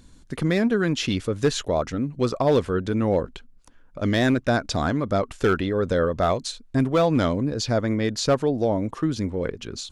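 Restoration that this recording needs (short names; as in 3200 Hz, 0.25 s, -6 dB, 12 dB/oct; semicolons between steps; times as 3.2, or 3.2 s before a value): clip repair -12.5 dBFS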